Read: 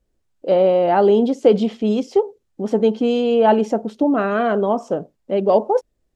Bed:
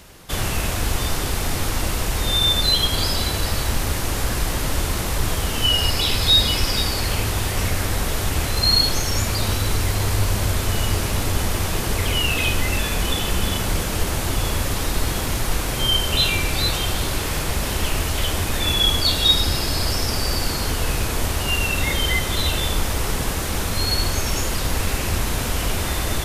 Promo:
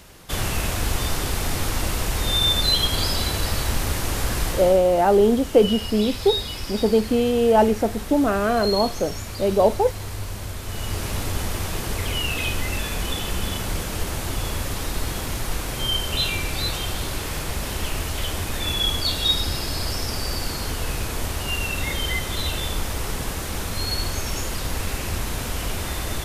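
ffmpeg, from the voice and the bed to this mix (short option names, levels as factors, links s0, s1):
-filter_complex "[0:a]adelay=4100,volume=0.794[s0];[1:a]volume=1.78,afade=t=out:st=4.47:d=0.33:silence=0.334965,afade=t=in:st=10.62:d=0.48:silence=0.473151[s1];[s0][s1]amix=inputs=2:normalize=0"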